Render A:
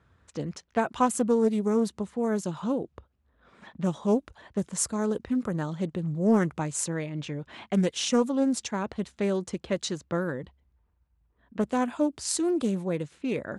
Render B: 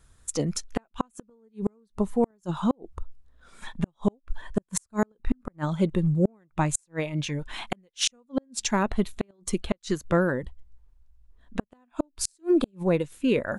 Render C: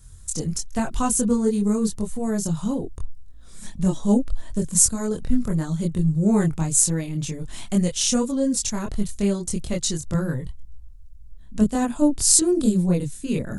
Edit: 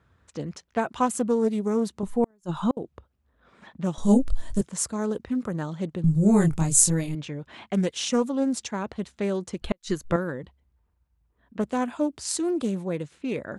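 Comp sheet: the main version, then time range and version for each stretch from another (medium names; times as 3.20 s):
A
2.03–2.77 s: from B
3.98–4.61 s: from C
6.04–7.15 s: from C
9.62–10.16 s: from B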